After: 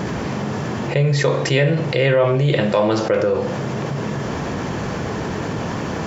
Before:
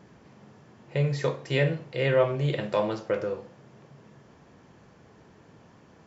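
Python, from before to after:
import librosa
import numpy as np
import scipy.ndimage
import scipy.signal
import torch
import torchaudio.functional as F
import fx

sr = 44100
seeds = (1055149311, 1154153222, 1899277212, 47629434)

y = fx.env_flatten(x, sr, amount_pct=70)
y = F.gain(torch.from_numpy(y), 4.5).numpy()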